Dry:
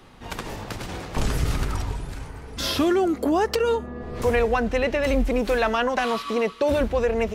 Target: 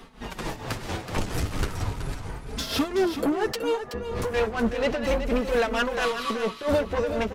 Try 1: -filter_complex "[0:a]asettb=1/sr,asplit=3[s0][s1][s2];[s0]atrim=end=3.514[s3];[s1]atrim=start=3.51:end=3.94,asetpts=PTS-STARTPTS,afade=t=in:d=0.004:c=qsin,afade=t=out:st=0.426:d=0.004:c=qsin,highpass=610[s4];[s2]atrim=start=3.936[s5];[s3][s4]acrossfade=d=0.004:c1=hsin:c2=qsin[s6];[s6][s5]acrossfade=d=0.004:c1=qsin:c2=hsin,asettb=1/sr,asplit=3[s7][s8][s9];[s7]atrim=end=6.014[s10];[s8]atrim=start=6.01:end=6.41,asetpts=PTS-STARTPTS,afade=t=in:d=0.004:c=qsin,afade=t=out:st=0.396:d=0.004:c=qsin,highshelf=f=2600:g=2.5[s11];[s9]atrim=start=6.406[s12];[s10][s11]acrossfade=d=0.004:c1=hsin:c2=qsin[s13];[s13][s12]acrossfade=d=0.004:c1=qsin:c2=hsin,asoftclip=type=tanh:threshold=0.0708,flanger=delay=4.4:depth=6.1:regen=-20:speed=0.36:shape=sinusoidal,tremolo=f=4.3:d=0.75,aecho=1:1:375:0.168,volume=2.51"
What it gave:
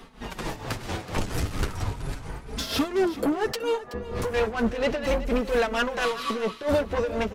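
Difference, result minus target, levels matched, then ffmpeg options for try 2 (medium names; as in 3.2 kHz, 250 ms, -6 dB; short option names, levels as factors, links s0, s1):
echo-to-direct -6 dB
-filter_complex "[0:a]asettb=1/sr,asplit=3[s0][s1][s2];[s0]atrim=end=3.514[s3];[s1]atrim=start=3.51:end=3.94,asetpts=PTS-STARTPTS,afade=t=in:d=0.004:c=qsin,afade=t=out:st=0.426:d=0.004:c=qsin,highpass=610[s4];[s2]atrim=start=3.936[s5];[s3][s4]acrossfade=d=0.004:c1=hsin:c2=qsin[s6];[s6][s5]acrossfade=d=0.004:c1=qsin:c2=hsin,asettb=1/sr,asplit=3[s7][s8][s9];[s7]atrim=end=6.014[s10];[s8]atrim=start=6.01:end=6.41,asetpts=PTS-STARTPTS,afade=t=in:d=0.004:c=qsin,afade=t=out:st=0.396:d=0.004:c=qsin,highshelf=f=2600:g=2.5[s11];[s9]atrim=start=6.406[s12];[s10][s11]acrossfade=d=0.004:c1=hsin:c2=qsin[s13];[s13][s12]acrossfade=d=0.004:c1=qsin:c2=hsin,asoftclip=type=tanh:threshold=0.0708,flanger=delay=4.4:depth=6.1:regen=-20:speed=0.36:shape=sinusoidal,tremolo=f=4.3:d=0.75,aecho=1:1:375:0.335,volume=2.51"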